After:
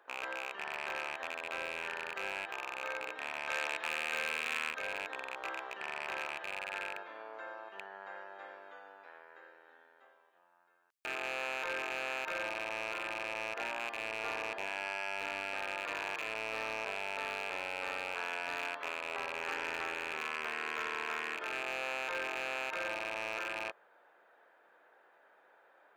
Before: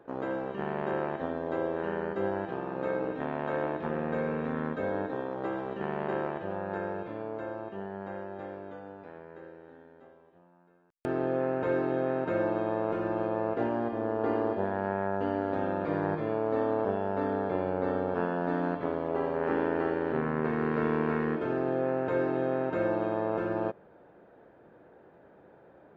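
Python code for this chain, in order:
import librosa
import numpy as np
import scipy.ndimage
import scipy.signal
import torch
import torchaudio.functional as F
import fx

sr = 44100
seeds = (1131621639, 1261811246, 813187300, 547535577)

y = fx.rattle_buzz(x, sr, strikes_db=-37.0, level_db=-26.0)
y = scipy.signal.sosfilt(scipy.signal.butter(2, 1200.0, 'highpass', fs=sr, output='sos'), y)
y = 10.0 ** (-31.5 / 20.0) * np.tanh(y / 10.0 ** (-31.5 / 20.0))
y = fx.high_shelf(y, sr, hz=2500.0, db=8.5, at=(3.49, 4.71))
y = F.gain(torch.from_numpy(y), 2.5).numpy()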